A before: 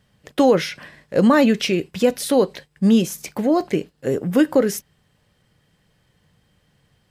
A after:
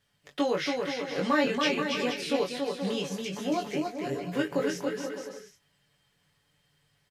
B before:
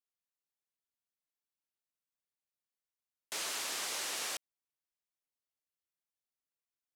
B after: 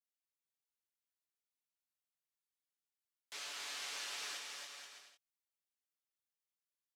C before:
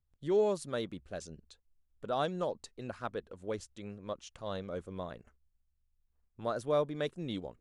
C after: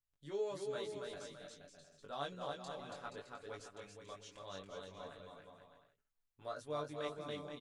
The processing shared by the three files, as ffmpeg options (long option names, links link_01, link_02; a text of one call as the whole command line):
ffmpeg -i in.wav -filter_complex "[0:a]flanger=delay=19.5:depth=2.2:speed=0.59,acrossover=split=6100[link_01][link_02];[link_02]acompressor=threshold=-56dB:ratio=4:attack=1:release=60[link_03];[link_01][link_03]amix=inputs=2:normalize=0,tiltshelf=frequency=820:gain=-5,aecho=1:1:7:0.53,asplit=2[link_04][link_05];[link_05]aecho=0:1:280|476|613.2|709.2|776.5:0.631|0.398|0.251|0.158|0.1[link_06];[link_04][link_06]amix=inputs=2:normalize=0,volume=-8dB" out.wav